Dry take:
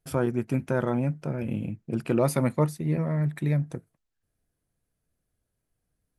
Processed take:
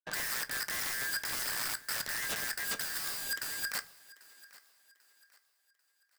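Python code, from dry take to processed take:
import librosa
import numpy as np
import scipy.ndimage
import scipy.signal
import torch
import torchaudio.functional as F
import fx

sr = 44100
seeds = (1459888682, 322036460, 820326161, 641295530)

p1 = fx.band_shuffle(x, sr, order='4123')
p2 = scipy.signal.sosfilt(scipy.signal.butter(2, 100.0, 'highpass', fs=sr, output='sos'), p1)
p3 = fx.env_lowpass(p2, sr, base_hz=640.0, full_db=-22.5)
p4 = scipy.signal.sosfilt(scipy.signal.butter(4, 2000.0, 'lowpass', fs=sr, output='sos'), p3)
p5 = fx.low_shelf(p4, sr, hz=130.0, db=-3.0)
p6 = fx.leveller(p5, sr, passes=5)
p7 = fx.rider(p6, sr, range_db=10, speed_s=2.0)
p8 = (np.mod(10.0 ** (21.0 / 20.0) * p7 + 1.0, 2.0) - 1.0) / 10.0 ** (21.0 / 20.0)
p9 = p8 + fx.echo_thinned(p8, sr, ms=792, feedback_pct=37, hz=290.0, wet_db=-20.5, dry=0)
p10 = fx.room_shoebox(p9, sr, seeds[0], volume_m3=150.0, walls='furnished', distance_m=0.41)
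y = p10 * 10.0 ** (-7.5 / 20.0)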